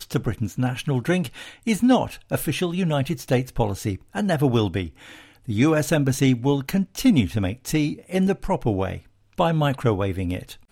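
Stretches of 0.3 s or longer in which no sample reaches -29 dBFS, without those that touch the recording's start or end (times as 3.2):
4.87–5.48
8.97–9.38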